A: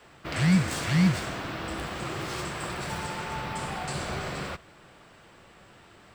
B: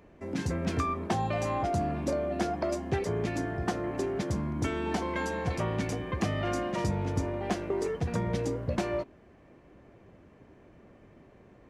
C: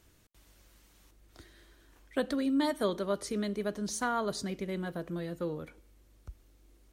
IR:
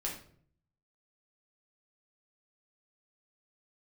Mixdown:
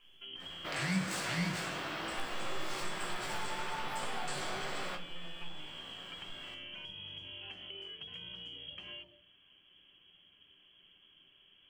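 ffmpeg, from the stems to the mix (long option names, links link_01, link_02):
-filter_complex "[0:a]highpass=frequency=490:poles=1,flanger=delay=16.5:depth=5.2:speed=1.1,adelay=400,volume=2.5dB,asplit=2[link_01][link_02];[link_02]volume=-5.5dB[link_03];[1:a]acompressor=threshold=-31dB:ratio=2.5,volume=-8.5dB,asplit=2[link_04][link_05];[link_05]volume=-17.5dB[link_06];[2:a]aeval=exprs='abs(val(0))':channel_layout=same,volume=-7dB,asplit=2[link_07][link_08];[link_08]volume=-6dB[link_09];[link_04][link_07]amix=inputs=2:normalize=0,lowpass=frequency=2900:width_type=q:width=0.5098,lowpass=frequency=2900:width_type=q:width=0.6013,lowpass=frequency=2900:width_type=q:width=0.9,lowpass=frequency=2900:width_type=q:width=2.563,afreqshift=-3400,acompressor=threshold=-42dB:ratio=6,volume=0dB[link_10];[3:a]atrim=start_sample=2205[link_11];[link_03][link_06][link_09]amix=inputs=3:normalize=0[link_12];[link_12][link_11]afir=irnorm=-1:irlink=0[link_13];[link_01][link_10][link_13]amix=inputs=3:normalize=0,acompressor=threshold=-46dB:ratio=1.5"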